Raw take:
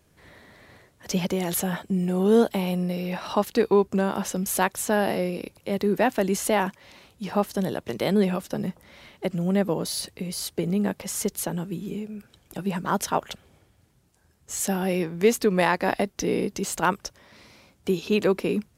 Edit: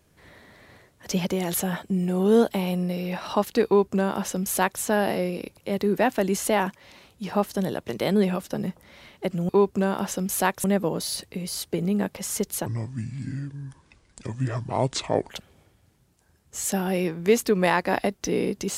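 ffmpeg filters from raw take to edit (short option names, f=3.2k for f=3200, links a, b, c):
-filter_complex "[0:a]asplit=5[a][b][c][d][e];[a]atrim=end=9.492[f];[b]atrim=start=3.658:end=4.812[g];[c]atrim=start=9.488:end=11.514[h];[d]atrim=start=11.51:end=13.25,asetpts=PTS-STARTPTS,asetrate=29106,aresample=44100[i];[e]atrim=start=13.246[j];[f][g]acrossfade=d=0.004:c1=hsin:c2=hsin[k];[k][h]acrossfade=d=0.004:c1=hsin:c2=hsin[l];[l][i]acrossfade=d=0.004:c1=hsin:c2=hsin[m];[m][j]acrossfade=d=0.004:c1=hsin:c2=hsin"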